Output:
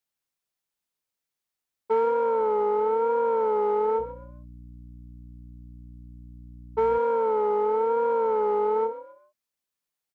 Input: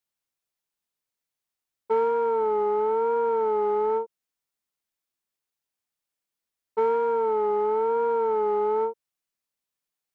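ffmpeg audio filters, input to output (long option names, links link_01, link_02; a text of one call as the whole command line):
ffmpeg -i in.wav -filter_complex "[0:a]asplit=4[link_01][link_02][link_03][link_04];[link_02]adelay=131,afreqshift=48,volume=-14.5dB[link_05];[link_03]adelay=262,afreqshift=96,volume=-24.4dB[link_06];[link_04]adelay=393,afreqshift=144,volume=-34.3dB[link_07];[link_01][link_05][link_06][link_07]amix=inputs=4:normalize=0,asettb=1/sr,asplit=3[link_08][link_09][link_10];[link_08]atrim=end=3.994[link_11];[link_09]atrim=start=3.99:end=6.98,asetpts=PTS-STARTPTS,afade=type=in:duration=0.004:curve=qsin,afade=type=out:start_time=2.986:duration=0.004:curve=qsin,aeval=exprs='val(0)+0.00708*(sin(2*PI*60*n/s)+sin(2*PI*2*60*n/s)/2+sin(2*PI*3*60*n/s)/3+sin(2*PI*4*60*n/s)/4+sin(2*PI*5*60*n/s)/5)':channel_layout=same[link_12];[link_10]atrim=start=6.976[link_13];[link_11][link_12]acrossfade=duration=0.004:curve1=hsin:curve2=qsin[link_14];[link_14][link_13]acrossfade=duration=0.004:curve1=qsin:curve2=hsin" out.wav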